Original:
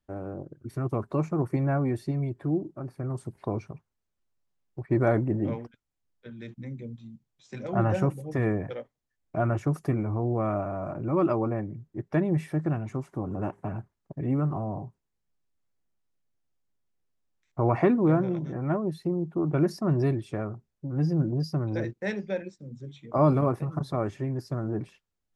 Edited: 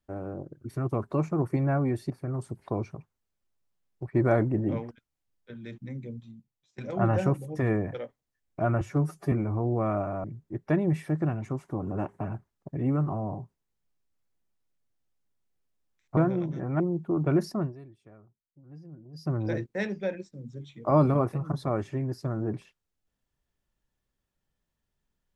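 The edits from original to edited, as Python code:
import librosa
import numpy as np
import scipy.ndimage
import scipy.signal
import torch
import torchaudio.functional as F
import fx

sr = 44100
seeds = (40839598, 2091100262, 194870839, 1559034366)

y = fx.edit(x, sr, fx.cut(start_s=2.1, length_s=0.76),
    fx.fade_out_to(start_s=6.89, length_s=0.65, floor_db=-20.5),
    fx.stretch_span(start_s=9.57, length_s=0.34, factor=1.5),
    fx.cut(start_s=10.83, length_s=0.85),
    fx.cut(start_s=17.61, length_s=0.49),
    fx.cut(start_s=18.73, length_s=0.34),
    fx.fade_down_up(start_s=19.81, length_s=1.78, db=-21.5, fade_s=0.19), tone=tone)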